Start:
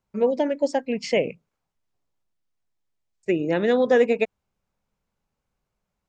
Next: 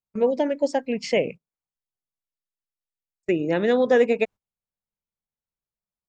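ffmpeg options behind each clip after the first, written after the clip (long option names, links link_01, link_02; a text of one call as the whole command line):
ffmpeg -i in.wav -af "agate=range=-19dB:threshold=-35dB:ratio=16:detection=peak" out.wav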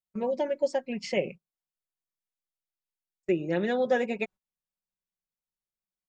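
ffmpeg -i in.wav -af "aecho=1:1:5.4:0.62,volume=-7dB" out.wav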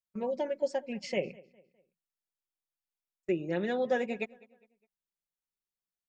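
ffmpeg -i in.wav -filter_complex "[0:a]asplit=2[link_01][link_02];[link_02]adelay=204,lowpass=frequency=3700:poles=1,volume=-23dB,asplit=2[link_03][link_04];[link_04]adelay=204,lowpass=frequency=3700:poles=1,volume=0.41,asplit=2[link_05][link_06];[link_06]adelay=204,lowpass=frequency=3700:poles=1,volume=0.41[link_07];[link_01][link_03][link_05][link_07]amix=inputs=4:normalize=0,volume=-4dB" out.wav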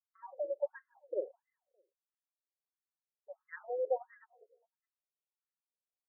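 ffmpeg -i in.wav -af "afftfilt=real='re*between(b*sr/1024,450*pow(1500/450,0.5+0.5*sin(2*PI*1.5*pts/sr))/1.41,450*pow(1500/450,0.5+0.5*sin(2*PI*1.5*pts/sr))*1.41)':imag='im*between(b*sr/1024,450*pow(1500/450,0.5+0.5*sin(2*PI*1.5*pts/sr))/1.41,450*pow(1500/450,0.5+0.5*sin(2*PI*1.5*pts/sr))*1.41)':win_size=1024:overlap=0.75,volume=-3dB" out.wav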